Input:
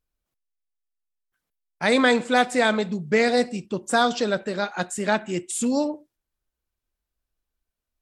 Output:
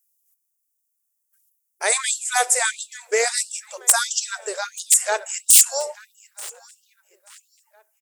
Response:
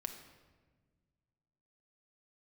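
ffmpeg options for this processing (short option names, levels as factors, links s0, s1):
-filter_complex "[0:a]aexciter=amount=12.1:drive=2.5:freq=5800,aeval=exprs='(mod(1.41*val(0)+1,2)-1)/1.41':c=same,asplit=2[s0][s1];[s1]adelay=885,lowpass=f=4600:p=1,volume=0.133,asplit=2[s2][s3];[s3]adelay=885,lowpass=f=4600:p=1,volume=0.41,asplit=2[s4][s5];[s5]adelay=885,lowpass=f=4600:p=1,volume=0.41[s6];[s0][s2][s4][s6]amix=inputs=4:normalize=0,afftfilt=real='re*gte(b*sr/1024,350*pow(2800/350,0.5+0.5*sin(2*PI*1.5*pts/sr)))':imag='im*gte(b*sr/1024,350*pow(2800/350,0.5+0.5*sin(2*PI*1.5*pts/sr)))':win_size=1024:overlap=0.75"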